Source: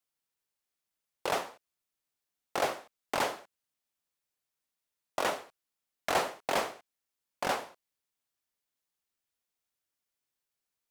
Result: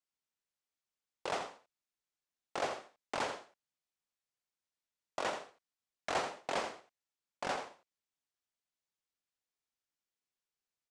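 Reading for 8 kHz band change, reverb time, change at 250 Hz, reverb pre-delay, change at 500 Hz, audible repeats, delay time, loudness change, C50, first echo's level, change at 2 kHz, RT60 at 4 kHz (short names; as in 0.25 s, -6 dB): -7.0 dB, none, -5.5 dB, none, -5.5 dB, 1, 84 ms, -6.0 dB, none, -9.0 dB, -5.5 dB, none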